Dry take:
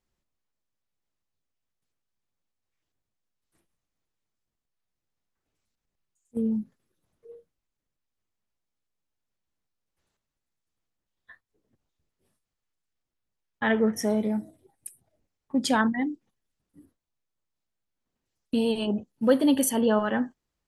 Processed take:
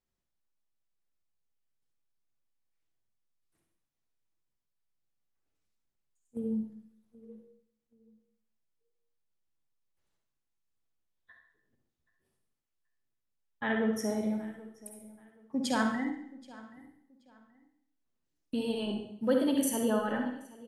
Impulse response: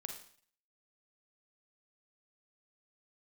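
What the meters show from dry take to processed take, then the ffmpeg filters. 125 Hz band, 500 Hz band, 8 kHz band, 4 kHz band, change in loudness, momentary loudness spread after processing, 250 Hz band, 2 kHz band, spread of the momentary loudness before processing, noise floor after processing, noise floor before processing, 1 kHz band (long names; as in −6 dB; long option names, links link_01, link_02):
−6.0 dB, −6.0 dB, −6.0 dB, −6.0 dB, −6.0 dB, 20 LU, −6.0 dB, −5.5 dB, 20 LU, −84 dBFS, −85 dBFS, −6.0 dB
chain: -filter_complex "[0:a]asplit=2[link_01][link_02];[link_02]adelay=778,lowpass=frequency=4200:poles=1,volume=-20dB,asplit=2[link_03][link_04];[link_04]adelay=778,lowpass=frequency=4200:poles=1,volume=0.28[link_05];[link_01][link_03][link_05]amix=inputs=3:normalize=0[link_06];[1:a]atrim=start_sample=2205,asetrate=35280,aresample=44100[link_07];[link_06][link_07]afir=irnorm=-1:irlink=0,volume=-4.5dB"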